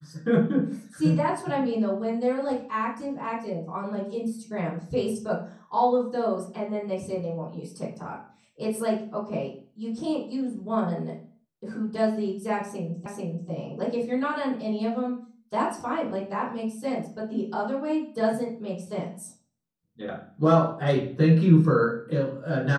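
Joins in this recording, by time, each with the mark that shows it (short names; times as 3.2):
13.06 repeat of the last 0.44 s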